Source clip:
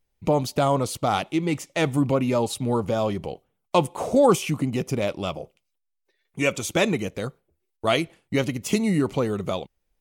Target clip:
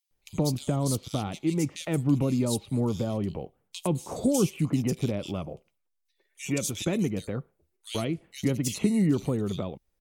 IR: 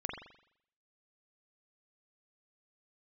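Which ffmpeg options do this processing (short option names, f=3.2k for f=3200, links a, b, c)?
-filter_complex "[0:a]acrossover=split=350|3600[a][b][c];[b]acompressor=threshold=-37dB:ratio=5[d];[a][d][c]amix=inputs=3:normalize=0,acrossover=split=2600[e][f];[e]adelay=110[g];[g][f]amix=inputs=2:normalize=0"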